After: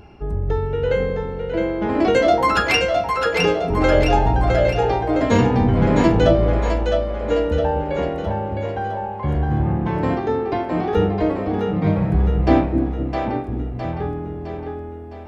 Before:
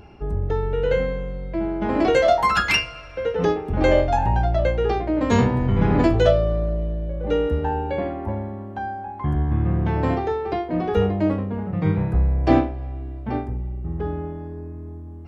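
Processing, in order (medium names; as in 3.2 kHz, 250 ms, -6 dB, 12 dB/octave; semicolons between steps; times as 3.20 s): two-band feedback delay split 430 Hz, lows 250 ms, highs 661 ms, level -4 dB; trim +1 dB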